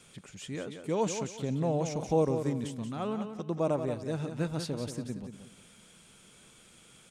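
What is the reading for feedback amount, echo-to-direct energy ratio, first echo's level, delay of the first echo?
28%, -8.0 dB, -8.5 dB, 0.18 s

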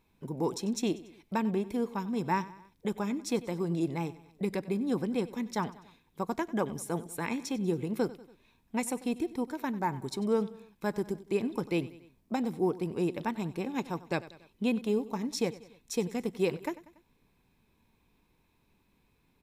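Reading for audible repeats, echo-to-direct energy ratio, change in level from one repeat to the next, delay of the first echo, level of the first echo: 3, -16.5 dB, -5.5 dB, 95 ms, -18.0 dB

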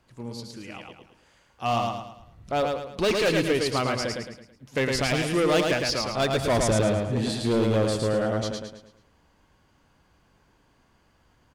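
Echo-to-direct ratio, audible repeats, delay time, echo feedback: -2.5 dB, 4, 0.109 s, 40%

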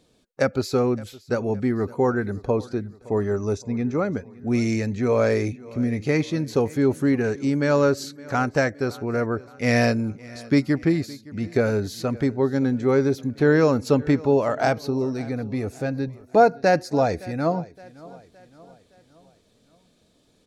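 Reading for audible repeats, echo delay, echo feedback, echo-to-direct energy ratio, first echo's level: 3, 0.566 s, 49%, -20.0 dB, -21.0 dB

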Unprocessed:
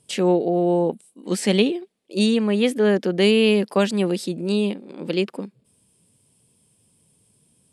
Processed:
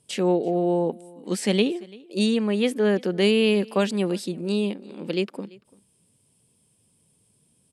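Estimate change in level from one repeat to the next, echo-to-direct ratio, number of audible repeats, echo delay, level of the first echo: no steady repeat, -23.5 dB, 1, 0.339 s, -23.5 dB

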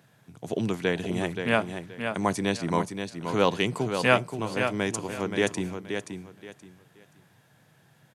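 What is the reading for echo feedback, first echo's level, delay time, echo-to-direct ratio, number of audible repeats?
24%, -7.0 dB, 0.526 s, -6.5 dB, 3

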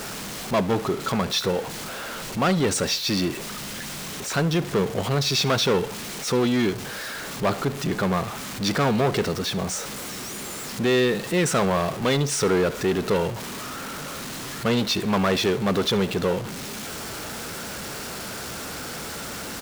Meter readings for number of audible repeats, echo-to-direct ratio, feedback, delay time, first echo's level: 2, -19.0 dB, 40%, 71 ms, -19.5 dB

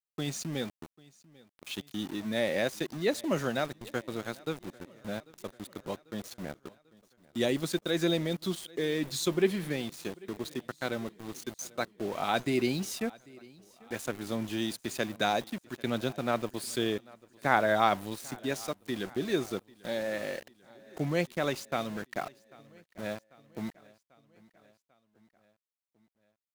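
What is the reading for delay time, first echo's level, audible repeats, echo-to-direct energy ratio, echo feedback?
0.793 s, -23.5 dB, 3, -21.5 dB, 60%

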